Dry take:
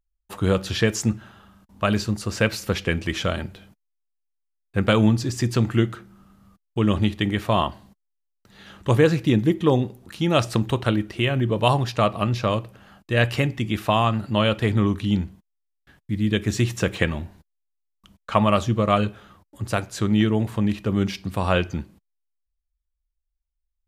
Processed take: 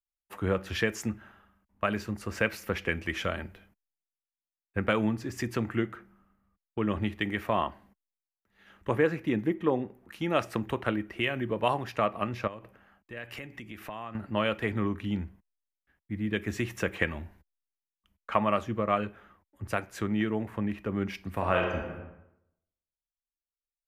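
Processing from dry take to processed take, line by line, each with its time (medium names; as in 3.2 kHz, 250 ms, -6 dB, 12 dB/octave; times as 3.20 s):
12.47–14.15 s: compression 8:1, threshold -30 dBFS
21.33–21.78 s: reverb throw, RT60 1.2 s, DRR 0.5 dB
whole clip: graphic EQ 125/2000/4000/8000 Hz -9/+6/-10/-8 dB; compression 2:1, threshold -31 dBFS; three bands expanded up and down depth 70%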